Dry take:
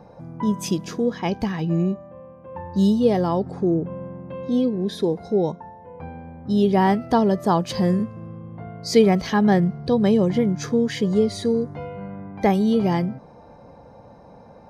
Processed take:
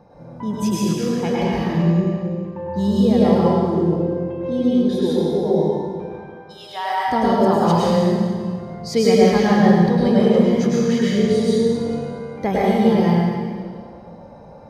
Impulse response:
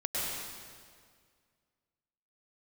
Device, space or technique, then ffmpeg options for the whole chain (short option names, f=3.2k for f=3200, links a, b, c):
stairwell: -filter_complex "[0:a]asettb=1/sr,asplit=3[a][b][c];[a]atrim=end=6.014[d];[b]atrim=start=6.01:end=7.08,asetpts=PTS-STARTPTS,afade=t=in:d=0.004:c=qsin,afade=t=out:st=1.066:d=0.004:c=qsin,highpass=f=790:w=0.5412,highpass=f=790:w=1.3066[e];[c]atrim=start=7.076[f];[d][e]acrossfade=d=0.004:c1=hsin:c2=qsin[g];[g][f]acrossfade=d=0.004:c1=qsin:c2=hsin[h];[1:a]atrim=start_sample=2205[i];[h][i]afir=irnorm=-1:irlink=0,volume=-3dB"